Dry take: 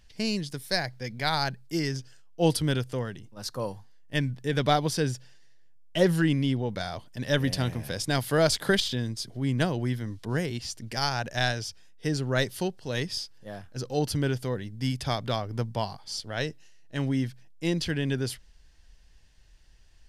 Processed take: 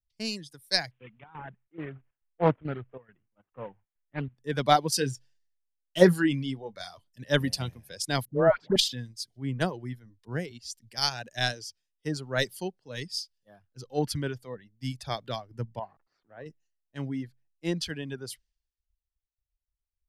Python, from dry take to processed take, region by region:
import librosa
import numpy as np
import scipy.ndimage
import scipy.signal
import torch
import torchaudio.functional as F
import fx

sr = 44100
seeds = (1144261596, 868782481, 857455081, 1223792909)

y = fx.chain(x, sr, fx.cvsd(bps=16000),
    fx.chopper(hz=2.3, depth_pct=60, duty_pct=75),
    fx.doppler_dist(depth_ms=0.51), at=(0.91, 4.38))
y = fx.chain(y, sr, fx.high_shelf(hz=4200.0, db=4.5),
    fx.doubler(ms=22.0, db=-12), at=(4.92, 7.24))
y = fx.chain(y, sr, fx.lowpass(hz=1600.0, slope=12),
    fx.dispersion(late='highs', ms=109.0, hz=720.0), at=(8.25, 8.76))
y = fx.chain(y, sr, fx.delta_mod(bps=64000, step_db=-34.5),
    fx.lowpass(hz=1100.0, slope=12),
    fx.tilt_eq(slope=2.0), at=(15.79, 16.46))
y = fx.dereverb_blind(y, sr, rt60_s=1.4)
y = fx.low_shelf(y, sr, hz=68.0, db=-6.0)
y = fx.band_widen(y, sr, depth_pct=100)
y = y * 10.0 ** (-3.5 / 20.0)